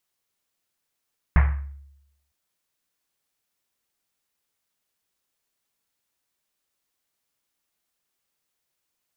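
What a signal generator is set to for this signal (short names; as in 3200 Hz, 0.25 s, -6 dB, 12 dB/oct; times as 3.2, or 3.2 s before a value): Risset drum length 0.96 s, pitch 70 Hz, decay 0.88 s, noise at 1400 Hz, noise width 1500 Hz, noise 15%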